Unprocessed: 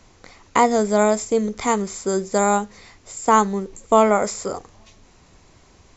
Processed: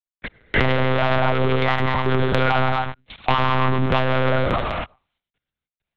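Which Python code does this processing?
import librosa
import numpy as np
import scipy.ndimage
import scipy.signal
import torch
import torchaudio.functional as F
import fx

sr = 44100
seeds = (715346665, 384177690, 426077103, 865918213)

p1 = fx.spec_dropout(x, sr, seeds[0], share_pct=33)
p2 = fx.peak_eq(p1, sr, hz=150.0, db=-14.5, octaves=0.36)
p3 = np.sign(p2) * np.maximum(np.abs(p2) - 10.0 ** (-42.0 / 20.0), 0.0)
p4 = p3 + fx.echo_single(p3, sr, ms=111, db=-12.0, dry=0)
p5 = fx.rev_gated(p4, sr, seeds[1], gate_ms=310, shape='flat', drr_db=4.5)
p6 = fx.rotary(p5, sr, hz=0.75)
p7 = fx.leveller(p6, sr, passes=5)
p8 = fx.lpc_monotone(p7, sr, seeds[2], pitch_hz=130.0, order=10)
p9 = fx.transient(p8, sr, attack_db=-4, sustain_db=5)
p10 = fx.over_compress(p9, sr, threshold_db=-12.0, ratio=-1.0)
p11 = fx.peak_eq(p10, sr, hz=410.0, db=-6.0, octaves=1.5)
p12 = fx.band_squash(p11, sr, depth_pct=70)
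y = p12 * librosa.db_to_amplitude(-4.0)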